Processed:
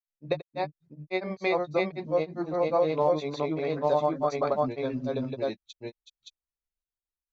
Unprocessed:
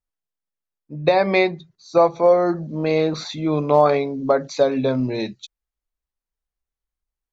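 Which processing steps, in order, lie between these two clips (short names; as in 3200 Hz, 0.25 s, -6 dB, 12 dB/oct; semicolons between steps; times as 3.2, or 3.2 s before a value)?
grains 0.124 s, spray 0.851 s, pitch spread up and down by 0 st; gain -7.5 dB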